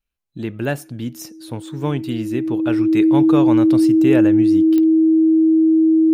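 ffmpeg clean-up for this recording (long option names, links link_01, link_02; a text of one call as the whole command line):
ffmpeg -i in.wav -af "adeclick=threshold=4,bandreject=frequency=320:width=30" out.wav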